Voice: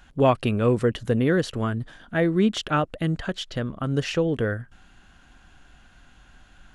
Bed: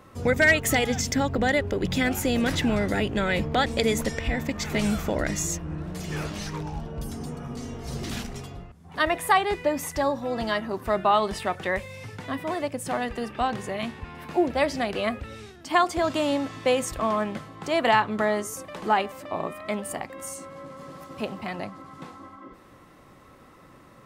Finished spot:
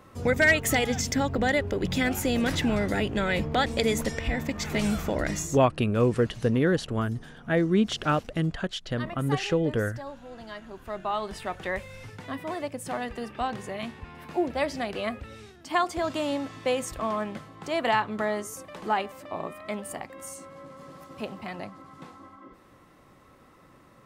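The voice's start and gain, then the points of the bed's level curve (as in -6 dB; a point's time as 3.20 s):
5.35 s, -2.0 dB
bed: 5.36 s -1.5 dB
5.65 s -15 dB
10.45 s -15 dB
11.65 s -4 dB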